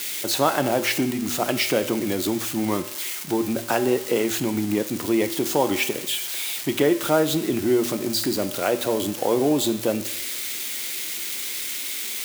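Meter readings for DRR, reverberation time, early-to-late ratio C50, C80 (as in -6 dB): 9.5 dB, 0.90 s, 13.0 dB, 15.0 dB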